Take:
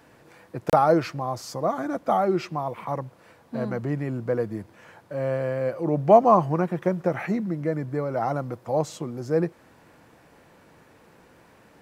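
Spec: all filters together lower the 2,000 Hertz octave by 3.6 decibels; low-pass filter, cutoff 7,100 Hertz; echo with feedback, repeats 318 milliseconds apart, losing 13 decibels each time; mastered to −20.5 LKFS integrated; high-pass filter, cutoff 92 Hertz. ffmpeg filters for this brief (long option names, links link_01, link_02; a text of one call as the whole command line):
ffmpeg -i in.wav -af "highpass=92,lowpass=7100,equalizer=frequency=2000:width_type=o:gain=-5,aecho=1:1:318|636|954:0.224|0.0493|0.0108,volume=5dB" out.wav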